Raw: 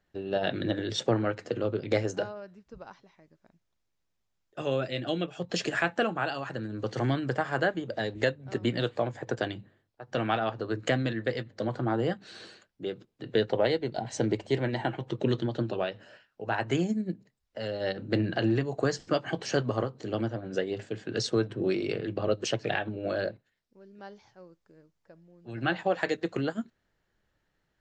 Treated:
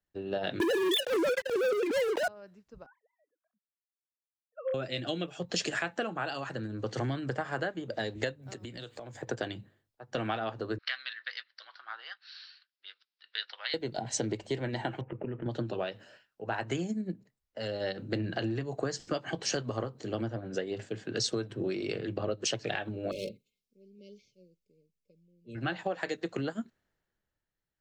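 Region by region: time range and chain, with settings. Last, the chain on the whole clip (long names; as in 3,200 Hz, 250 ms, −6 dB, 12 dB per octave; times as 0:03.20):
0:00.60–0:02.28: three sine waves on the formant tracks + leveller curve on the samples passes 5 + transient designer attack −11 dB, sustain +10 dB
0:02.86–0:04.74: three sine waves on the formant tracks + phaser with its sweep stopped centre 570 Hz, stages 8
0:08.42–0:09.22: high-shelf EQ 7,500 Hz +10.5 dB + downward compressor 12 to 1, threshold −36 dBFS
0:10.78–0:13.74: Chebyshev high-pass filter 1,300 Hz, order 3 + bad sample-rate conversion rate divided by 4×, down none, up filtered
0:15.01–0:15.46: Butterworth low-pass 2,700 Hz 72 dB per octave + notch filter 1,100 Hz, Q 16 + downward compressor, threshold −31 dBFS
0:23.11–0:25.55: hard clipping −28 dBFS + linear-phase brick-wall band-stop 590–2,100 Hz + comb filter 4.7 ms, depth 47%
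whole clip: high-shelf EQ 5,300 Hz +7.5 dB; downward compressor 6 to 1, threshold −29 dBFS; multiband upward and downward expander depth 40%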